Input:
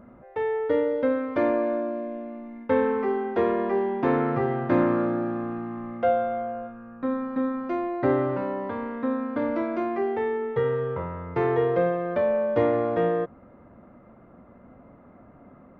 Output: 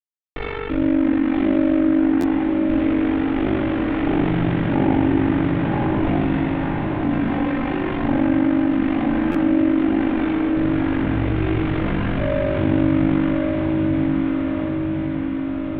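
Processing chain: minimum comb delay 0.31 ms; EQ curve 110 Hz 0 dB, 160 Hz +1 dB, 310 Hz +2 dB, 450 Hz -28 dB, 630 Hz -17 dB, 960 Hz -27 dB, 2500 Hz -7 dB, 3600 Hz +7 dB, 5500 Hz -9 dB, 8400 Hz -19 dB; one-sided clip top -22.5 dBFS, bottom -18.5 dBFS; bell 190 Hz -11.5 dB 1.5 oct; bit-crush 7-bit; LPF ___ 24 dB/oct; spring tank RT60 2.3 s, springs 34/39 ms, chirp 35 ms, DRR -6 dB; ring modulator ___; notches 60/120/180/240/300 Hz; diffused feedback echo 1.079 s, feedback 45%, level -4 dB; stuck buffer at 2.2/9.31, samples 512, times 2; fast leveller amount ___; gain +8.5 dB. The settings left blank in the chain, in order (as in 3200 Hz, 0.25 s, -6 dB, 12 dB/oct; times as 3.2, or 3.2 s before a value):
2100 Hz, 24 Hz, 50%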